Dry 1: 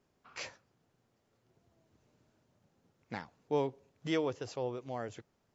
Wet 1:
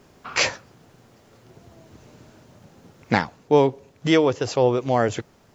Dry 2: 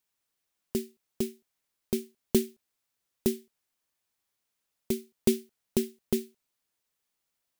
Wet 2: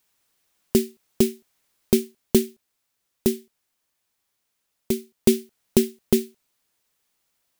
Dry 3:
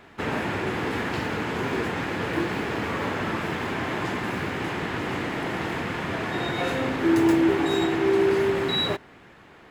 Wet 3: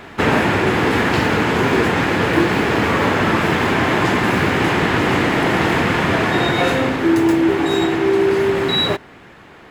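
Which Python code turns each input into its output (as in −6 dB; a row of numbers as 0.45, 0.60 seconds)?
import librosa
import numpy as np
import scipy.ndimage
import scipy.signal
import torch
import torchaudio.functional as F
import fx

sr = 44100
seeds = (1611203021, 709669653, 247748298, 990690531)

y = fx.rider(x, sr, range_db=5, speed_s=0.5)
y = y * 10.0 ** (-2 / 20.0) / np.max(np.abs(y))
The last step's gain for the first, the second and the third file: +17.5, +9.0, +9.5 decibels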